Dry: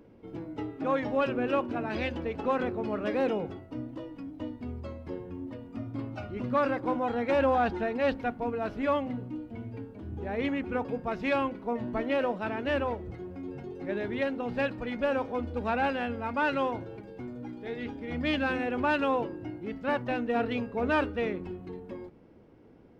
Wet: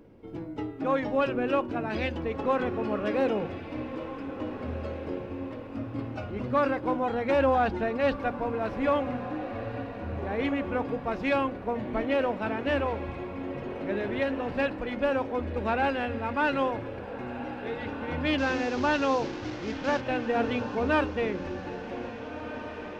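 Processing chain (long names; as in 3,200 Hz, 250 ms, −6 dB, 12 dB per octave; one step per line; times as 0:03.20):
0:18.38–0:20.01: linear delta modulator 32 kbit/s, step −35.5 dBFS
low-shelf EQ 73 Hz +5 dB
mains-hum notches 60/120/180/240 Hz
on a send: feedback delay with all-pass diffusion 1,712 ms, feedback 47%, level −11 dB
on the sum: level +1.5 dB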